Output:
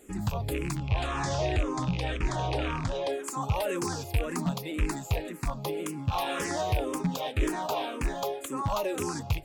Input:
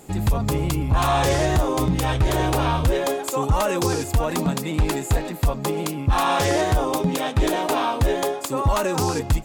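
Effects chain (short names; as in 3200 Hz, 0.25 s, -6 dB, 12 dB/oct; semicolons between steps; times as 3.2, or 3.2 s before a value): rattling part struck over -18 dBFS, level -16 dBFS; 0.77–3.13 LPF 7500 Hz 24 dB/oct; endless phaser -1.9 Hz; gain -6 dB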